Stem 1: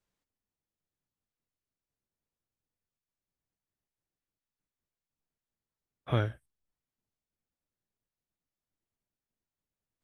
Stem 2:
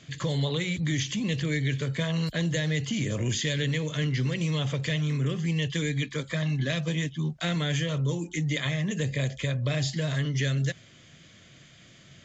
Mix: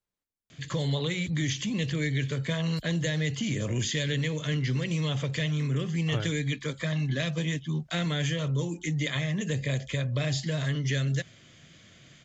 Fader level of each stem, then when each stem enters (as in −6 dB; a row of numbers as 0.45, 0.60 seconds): −5.0, −1.0 decibels; 0.00, 0.50 seconds